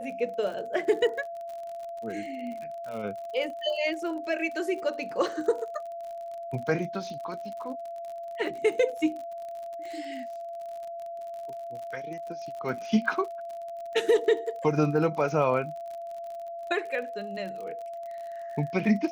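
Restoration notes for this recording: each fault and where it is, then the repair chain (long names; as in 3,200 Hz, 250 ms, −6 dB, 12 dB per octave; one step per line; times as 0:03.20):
surface crackle 49 per second −37 dBFS
whistle 680 Hz −35 dBFS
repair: click removal
notch filter 680 Hz, Q 30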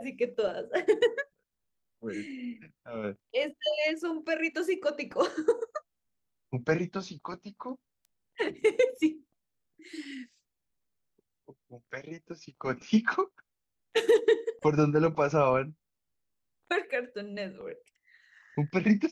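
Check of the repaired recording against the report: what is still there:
none of them is left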